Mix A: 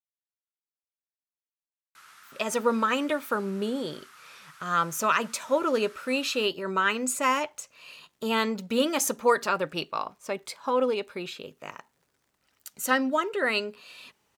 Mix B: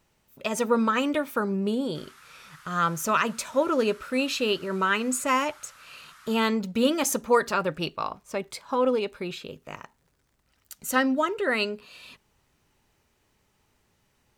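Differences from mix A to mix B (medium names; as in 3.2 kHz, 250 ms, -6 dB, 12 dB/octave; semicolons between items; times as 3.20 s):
speech: entry -1.95 s; master: remove high-pass 280 Hz 6 dB/octave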